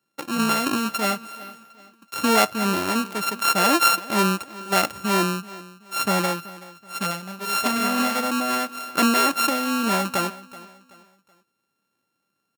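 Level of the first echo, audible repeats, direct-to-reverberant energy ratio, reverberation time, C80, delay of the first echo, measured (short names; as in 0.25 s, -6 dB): -19.0 dB, 2, none, none, none, 0.378 s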